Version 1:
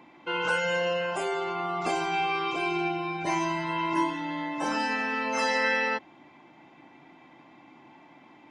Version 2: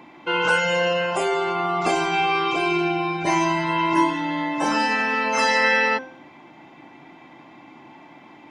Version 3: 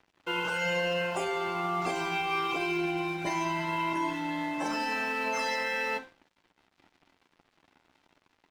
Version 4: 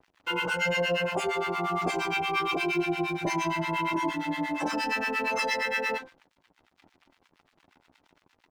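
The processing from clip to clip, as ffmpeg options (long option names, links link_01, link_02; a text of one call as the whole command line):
ffmpeg -i in.wav -af "bandreject=frequency=260.2:width_type=h:width=4,bandreject=frequency=520.4:width_type=h:width=4,bandreject=frequency=780.6:width_type=h:width=4,bandreject=frequency=1040.8:width_type=h:width=4,bandreject=frequency=1301:width_type=h:width=4,bandreject=frequency=1561.2:width_type=h:width=4,bandreject=frequency=1821.4:width_type=h:width=4,bandreject=frequency=2081.6:width_type=h:width=4,bandreject=frequency=2341.8:width_type=h:width=4,bandreject=frequency=2602:width_type=h:width=4,bandreject=frequency=2862.2:width_type=h:width=4,bandreject=frequency=3122.4:width_type=h:width=4,bandreject=frequency=3382.6:width_type=h:width=4,bandreject=frequency=3642.8:width_type=h:width=4,bandreject=frequency=3903:width_type=h:width=4,bandreject=frequency=4163.2:width_type=h:width=4,bandreject=frequency=4423.4:width_type=h:width=4,bandreject=frequency=4683.6:width_type=h:width=4,bandreject=frequency=4943.8:width_type=h:width=4,bandreject=frequency=5204:width_type=h:width=4,bandreject=frequency=5464.2:width_type=h:width=4,bandreject=frequency=5724.4:width_type=h:width=4,bandreject=frequency=5984.6:width_type=h:width=4,bandreject=frequency=6244.8:width_type=h:width=4,bandreject=frequency=6505:width_type=h:width=4,bandreject=frequency=6765.2:width_type=h:width=4,bandreject=frequency=7025.4:width_type=h:width=4,bandreject=frequency=7285.6:width_type=h:width=4,bandreject=frequency=7545.8:width_type=h:width=4,bandreject=frequency=7806:width_type=h:width=4,bandreject=frequency=8066.2:width_type=h:width=4,volume=7.5dB" out.wav
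ffmpeg -i in.wav -af "alimiter=limit=-14.5dB:level=0:latency=1:release=36,aeval=exprs='sgn(val(0))*max(abs(val(0))-0.00841,0)':channel_layout=same,aecho=1:1:11|52:0.299|0.133,volume=-7dB" out.wav
ffmpeg -i in.wav -filter_complex "[0:a]acrossover=split=940[link_01][link_02];[link_01]aeval=exprs='val(0)*(1-1/2+1/2*cos(2*PI*8.6*n/s))':channel_layout=same[link_03];[link_02]aeval=exprs='val(0)*(1-1/2-1/2*cos(2*PI*8.6*n/s))':channel_layout=same[link_04];[link_03][link_04]amix=inputs=2:normalize=0,volume=7dB" out.wav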